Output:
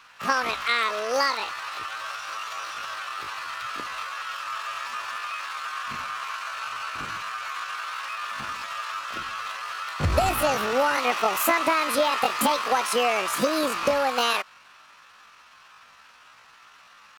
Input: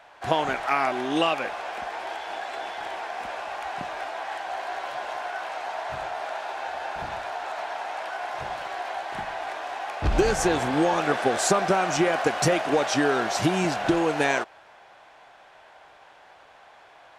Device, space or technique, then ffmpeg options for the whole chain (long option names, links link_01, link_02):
chipmunk voice: -af "asetrate=74167,aresample=44100,atempo=0.594604"